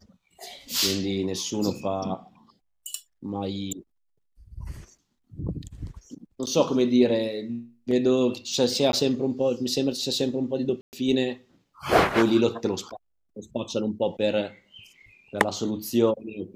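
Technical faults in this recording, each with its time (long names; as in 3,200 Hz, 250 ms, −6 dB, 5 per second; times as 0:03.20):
0:06.46–0:06.47: drop-out 9 ms
0:08.92–0:08.93: drop-out
0:10.81–0:10.93: drop-out 119 ms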